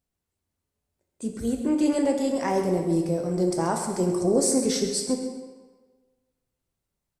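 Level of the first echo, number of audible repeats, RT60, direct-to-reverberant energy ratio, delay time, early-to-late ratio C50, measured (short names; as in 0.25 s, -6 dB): -11.5 dB, 1, 1.4 s, 2.0 dB, 0.132 s, 4.5 dB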